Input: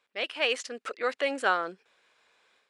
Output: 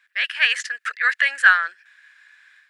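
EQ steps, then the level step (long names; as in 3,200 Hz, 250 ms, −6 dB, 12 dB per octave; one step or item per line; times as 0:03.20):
high-pass with resonance 1,700 Hz, resonance Q 10
high-shelf EQ 5,500 Hz +4.5 dB
+3.5 dB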